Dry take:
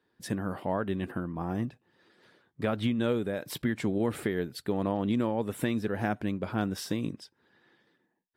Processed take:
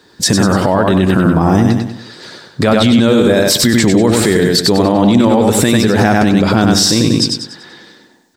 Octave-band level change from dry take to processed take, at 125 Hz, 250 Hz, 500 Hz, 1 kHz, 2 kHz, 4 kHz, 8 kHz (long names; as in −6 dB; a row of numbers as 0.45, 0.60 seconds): +20.5, +20.0, +19.5, +20.0, +20.0, +28.0, +29.5 decibels